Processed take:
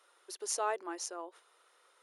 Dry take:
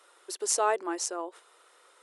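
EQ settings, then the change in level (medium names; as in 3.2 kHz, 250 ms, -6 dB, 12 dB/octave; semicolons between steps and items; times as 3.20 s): bass shelf 320 Hz -5.5 dB; band-stop 7.8 kHz, Q 5.9; -6.5 dB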